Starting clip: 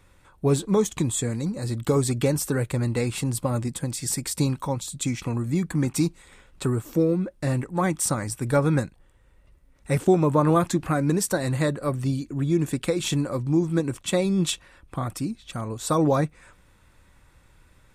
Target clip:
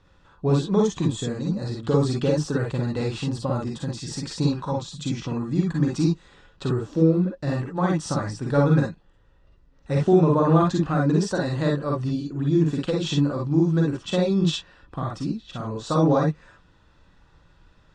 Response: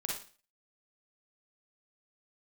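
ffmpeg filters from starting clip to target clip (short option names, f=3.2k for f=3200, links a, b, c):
-filter_complex "[0:a]lowpass=f=5.6k:w=0.5412,lowpass=f=5.6k:w=1.3066,equalizer=f=2.2k:w=6.6:g=-13.5[a];[1:a]atrim=start_sample=2205,atrim=end_sample=3087[b];[a][b]afir=irnorm=-1:irlink=0"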